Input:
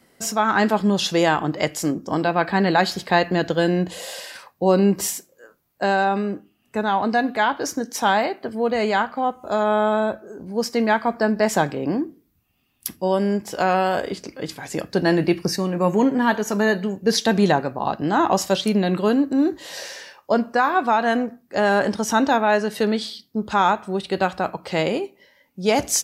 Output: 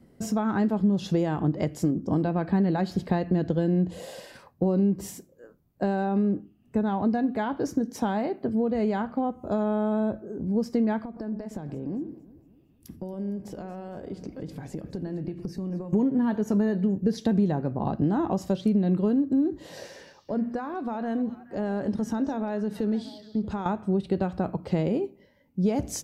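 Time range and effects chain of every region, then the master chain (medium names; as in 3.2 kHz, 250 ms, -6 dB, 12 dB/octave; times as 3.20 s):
11.04–15.93 s: compression, threshold -34 dBFS + echo whose repeats swap between lows and highs 115 ms, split 1 kHz, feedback 68%, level -13.5 dB
19.86–23.66 s: hum notches 60/120/180/240 Hz + compression 2:1, threshold -32 dBFS + repeats whose band climbs or falls 212 ms, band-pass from 4.5 kHz, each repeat -1.4 oct, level -10 dB
whole clip: tilt shelf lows +7 dB, about 670 Hz; compression, threshold -20 dBFS; bass shelf 350 Hz +9.5 dB; trim -6.5 dB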